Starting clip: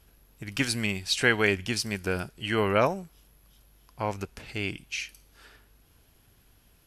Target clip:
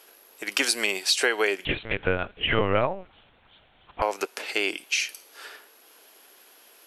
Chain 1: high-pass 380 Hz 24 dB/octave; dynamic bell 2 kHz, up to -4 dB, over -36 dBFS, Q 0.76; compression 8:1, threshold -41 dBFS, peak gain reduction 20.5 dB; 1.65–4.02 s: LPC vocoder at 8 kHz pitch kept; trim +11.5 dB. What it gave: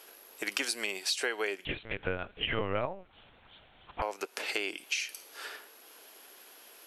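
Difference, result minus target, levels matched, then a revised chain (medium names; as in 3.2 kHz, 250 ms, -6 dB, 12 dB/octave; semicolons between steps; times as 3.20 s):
compression: peak gain reduction +9 dB
high-pass 380 Hz 24 dB/octave; dynamic bell 2 kHz, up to -4 dB, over -36 dBFS, Q 0.76; compression 8:1, threshold -30.5 dBFS, peak gain reduction 11.5 dB; 1.65–4.02 s: LPC vocoder at 8 kHz pitch kept; trim +11.5 dB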